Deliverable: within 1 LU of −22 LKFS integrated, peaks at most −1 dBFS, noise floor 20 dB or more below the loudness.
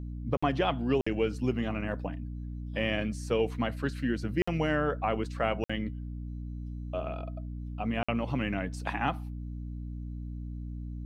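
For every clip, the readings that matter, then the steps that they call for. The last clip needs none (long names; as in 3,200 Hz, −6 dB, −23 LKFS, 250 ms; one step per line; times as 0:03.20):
number of dropouts 5; longest dropout 55 ms; mains hum 60 Hz; hum harmonics up to 300 Hz; level of the hum −36 dBFS; integrated loudness −32.5 LKFS; sample peak −13.5 dBFS; target loudness −22.0 LKFS
→ repair the gap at 0:00.37/0:01.01/0:04.42/0:05.64/0:08.03, 55 ms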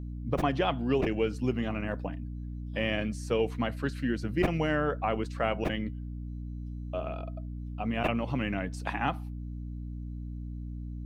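number of dropouts 0; mains hum 60 Hz; hum harmonics up to 300 Hz; level of the hum −35 dBFS
→ mains-hum notches 60/120/180/240/300 Hz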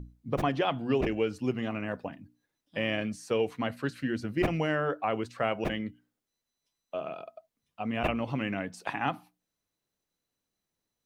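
mains hum none found; integrated loudness −32.0 LKFS; sample peak −14.0 dBFS; target loudness −22.0 LKFS
→ level +10 dB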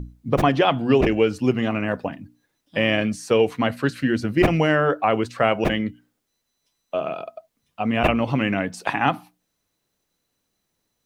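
integrated loudness −22.0 LKFS; sample peak −4.0 dBFS; background noise floor −76 dBFS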